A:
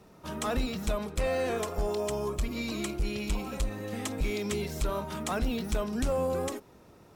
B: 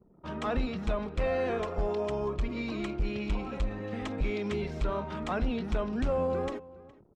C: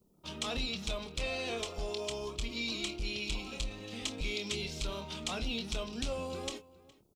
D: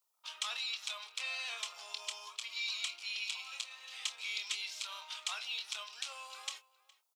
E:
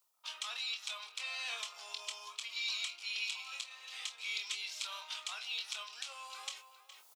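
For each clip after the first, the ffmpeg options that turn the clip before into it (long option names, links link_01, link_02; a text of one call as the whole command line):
ffmpeg -i in.wav -filter_complex "[0:a]anlmdn=0.00398,lowpass=2900,asplit=2[link_01][link_02];[link_02]adelay=414,volume=-20dB,highshelf=frequency=4000:gain=-9.32[link_03];[link_01][link_03]amix=inputs=2:normalize=0" out.wav
ffmpeg -i in.wav -filter_complex "[0:a]aexciter=amount=10.1:drive=4.6:freq=2600,asplit=2[link_01][link_02];[link_02]adelay=26,volume=-9.5dB[link_03];[link_01][link_03]amix=inputs=2:normalize=0,volume=-8.5dB" out.wav
ffmpeg -i in.wav -af "highpass=frequency=1000:width=0.5412,highpass=frequency=1000:width=1.3066" out.wav
ffmpeg -i in.wav -filter_complex "[0:a]areverse,acompressor=mode=upward:threshold=-49dB:ratio=2.5,areverse,alimiter=level_in=2.5dB:limit=-24dB:level=0:latency=1:release=388,volume=-2.5dB,asplit=2[link_01][link_02];[link_02]adelay=22,volume=-10.5dB[link_03];[link_01][link_03]amix=inputs=2:normalize=0,volume=1.5dB" out.wav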